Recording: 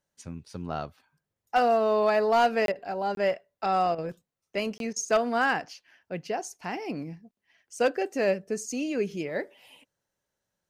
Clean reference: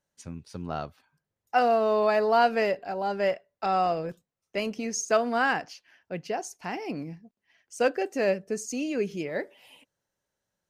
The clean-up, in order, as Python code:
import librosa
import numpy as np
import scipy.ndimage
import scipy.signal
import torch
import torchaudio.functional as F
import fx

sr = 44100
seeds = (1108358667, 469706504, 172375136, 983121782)

y = fx.fix_declip(x, sr, threshold_db=-15.5)
y = fx.fix_interpolate(y, sr, at_s=(2.66, 3.15, 4.78), length_ms=22.0)
y = fx.fix_interpolate(y, sr, at_s=(2.72, 3.95, 4.93), length_ms=31.0)